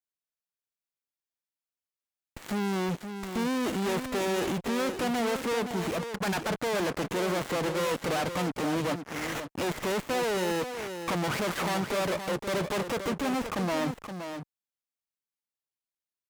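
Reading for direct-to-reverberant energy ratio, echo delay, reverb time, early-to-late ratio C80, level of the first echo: no reverb, 521 ms, no reverb, no reverb, -8.5 dB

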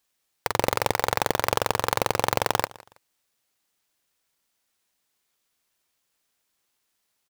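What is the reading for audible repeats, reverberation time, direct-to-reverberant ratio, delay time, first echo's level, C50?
2, no reverb, no reverb, 162 ms, -21.5 dB, no reverb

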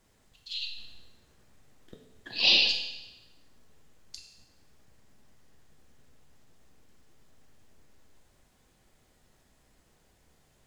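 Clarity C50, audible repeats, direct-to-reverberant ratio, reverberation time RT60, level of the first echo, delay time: 5.5 dB, no echo, 1.0 dB, 1.0 s, no echo, no echo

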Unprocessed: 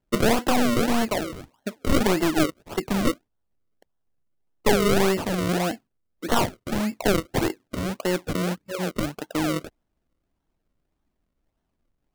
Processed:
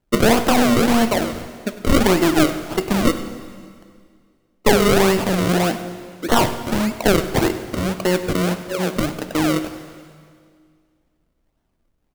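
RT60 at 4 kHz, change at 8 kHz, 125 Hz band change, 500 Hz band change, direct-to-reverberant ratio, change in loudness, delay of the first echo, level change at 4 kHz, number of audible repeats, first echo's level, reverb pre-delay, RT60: 1.9 s, +6.0 dB, +6.0 dB, +6.0 dB, 9.0 dB, +6.0 dB, 99 ms, +6.0 dB, 1, -16.0 dB, 7 ms, 2.0 s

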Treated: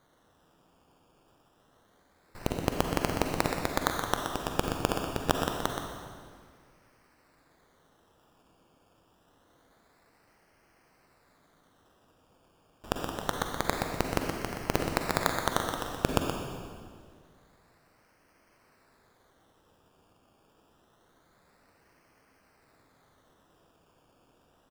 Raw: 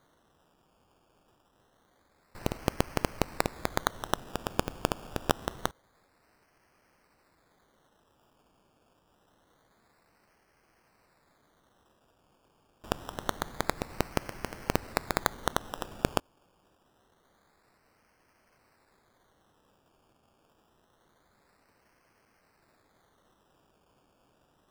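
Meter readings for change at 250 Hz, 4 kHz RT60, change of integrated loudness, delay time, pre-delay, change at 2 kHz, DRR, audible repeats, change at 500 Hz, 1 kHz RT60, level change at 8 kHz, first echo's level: +3.0 dB, 1.7 s, +2.0 dB, 124 ms, 38 ms, +2.5 dB, 1.0 dB, 1, +2.5 dB, 1.8 s, +2.5 dB, -7.0 dB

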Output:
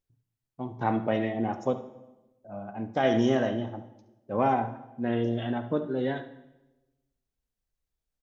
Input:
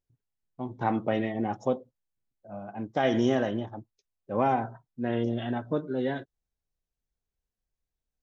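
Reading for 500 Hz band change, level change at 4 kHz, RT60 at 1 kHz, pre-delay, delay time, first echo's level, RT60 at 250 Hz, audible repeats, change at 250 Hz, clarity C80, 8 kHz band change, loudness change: +1.0 dB, +0.5 dB, 1.0 s, 14 ms, 71 ms, -14.5 dB, 1.2 s, 1, +0.5 dB, 15.0 dB, no reading, +0.5 dB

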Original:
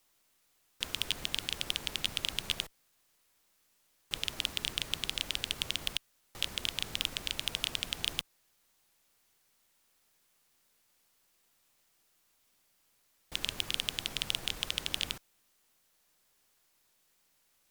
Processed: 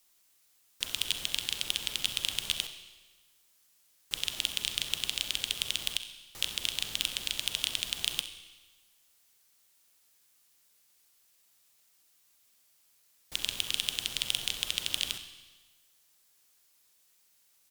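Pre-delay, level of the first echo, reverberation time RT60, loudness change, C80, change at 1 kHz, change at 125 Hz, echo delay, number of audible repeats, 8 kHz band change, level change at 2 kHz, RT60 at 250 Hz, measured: 34 ms, -15.0 dB, 1.3 s, +2.5 dB, 11.5 dB, -2.5 dB, -4.0 dB, 66 ms, 1, +5.0 dB, +1.0 dB, 1.3 s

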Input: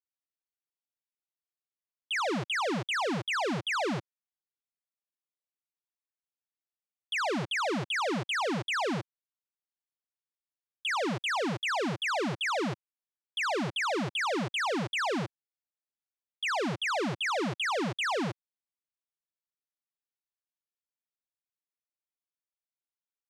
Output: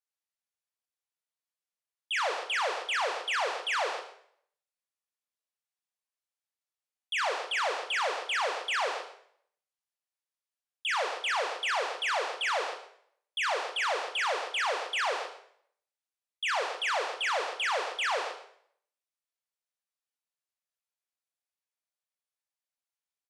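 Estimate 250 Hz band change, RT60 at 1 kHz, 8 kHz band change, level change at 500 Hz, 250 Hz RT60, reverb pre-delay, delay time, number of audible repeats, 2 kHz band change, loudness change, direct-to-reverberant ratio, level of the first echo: -23.5 dB, 0.60 s, +1.0 dB, -1.0 dB, 0.60 s, 5 ms, 128 ms, 1, +1.5 dB, 0.0 dB, 4.5 dB, -15.5 dB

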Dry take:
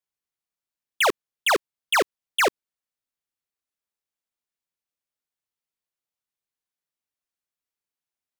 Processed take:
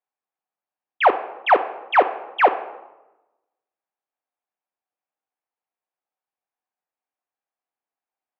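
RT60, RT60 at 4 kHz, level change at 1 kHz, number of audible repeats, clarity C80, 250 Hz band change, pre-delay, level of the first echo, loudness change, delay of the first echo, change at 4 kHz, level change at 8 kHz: 1.0 s, 0.65 s, +8.5 dB, no echo, 15.0 dB, +1.0 dB, 3 ms, no echo, +4.0 dB, no echo, -8.0 dB, under -35 dB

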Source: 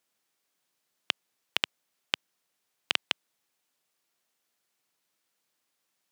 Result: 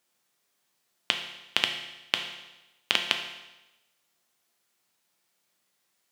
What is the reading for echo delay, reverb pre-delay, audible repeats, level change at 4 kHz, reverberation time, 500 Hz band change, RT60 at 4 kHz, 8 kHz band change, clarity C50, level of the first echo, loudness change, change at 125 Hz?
no echo, 6 ms, no echo, +4.5 dB, 1.0 s, +4.5 dB, 1.0 s, +4.5 dB, 7.0 dB, no echo, +4.0 dB, +5.0 dB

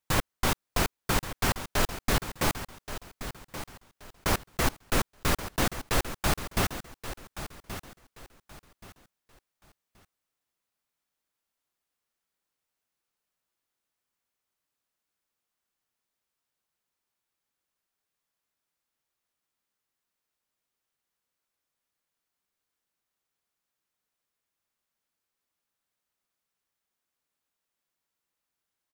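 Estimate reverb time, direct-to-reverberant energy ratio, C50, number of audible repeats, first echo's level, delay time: no reverb, no reverb, no reverb, 3, -12.0 dB, 1127 ms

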